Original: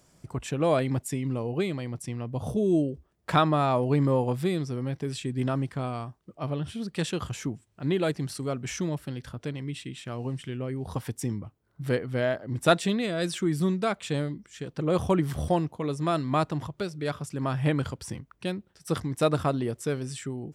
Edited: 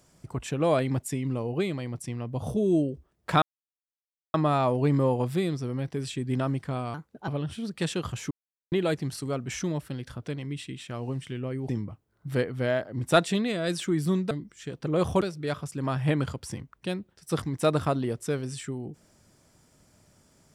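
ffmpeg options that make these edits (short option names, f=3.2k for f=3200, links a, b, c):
-filter_complex "[0:a]asplit=9[a][b][c][d][e][f][g][h][i];[a]atrim=end=3.42,asetpts=PTS-STARTPTS,afade=t=out:st=3.416:d=0.004:c=hsin,apad=pad_dur=0.92[j];[b]atrim=start=3.42:end=6.024,asetpts=PTS-STARTPTS,afade=t=in:d=0.004:c=hsin[k];[c]atrim=start=6.02:end=6.45,asetpts=PTS-STARTPTS,asetrate=56007,aresample=44100,atrim=end_sample=14931,asetpts=PTS-STARTPTS[l];[d]atrim=start=6.446:end=7.48,asetpts=PTS-STARTPTS,afade=t=out:st=1.03:d=0.004:c=hsin[m];[e]atrim=start=7.48:end=7.89,asetpts=PTS-STARTPTS,volume=0[n];[f]atrim=start=7.89:end=10.862,asetpts=PTS-STARTPTS,afade=t=in:d=0.004:c=hsin[o];[g]atrim=start=11.228:end=13.852[p];[h]atrim=start=14.248:end=15.152[q];[i]atrim=start=16.788[r];[j][k]concat=n=2:v=0:a=1[s];[s][l]acrossfade=d=0.004:c1=hsin:c2=hsin[t];[m][n][o]concat=n=3:v=0:a=1[u];[t][u]acrossfade=d=0.004:c1=hsin:c2=hsin[v];[v][p]acrossfade=d=0.004:c1=hsin:c2=hsin[w];[w][q]acrossfade=d=0.004:c1=hsin:c2=hsin[x];[x][r]acrossfade=d=0.004:c1=hsin:c2=hsin"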